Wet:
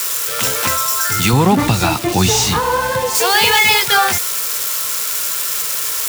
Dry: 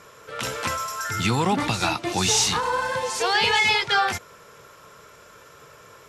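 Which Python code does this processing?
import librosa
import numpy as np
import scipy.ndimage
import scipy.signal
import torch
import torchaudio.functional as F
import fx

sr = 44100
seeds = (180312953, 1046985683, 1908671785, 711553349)

y = x + 0.5 * 10.0 ** (-17.5 / 20.0) * np.diff(np.sign(x), prepend=np.sign(x[:1]))
y = fx.tilt_eq(y, sr, slope=-2.0, at=(1.33, 3.15))
y = F.gain(torch.from_numpy(y), 7.0).numpy()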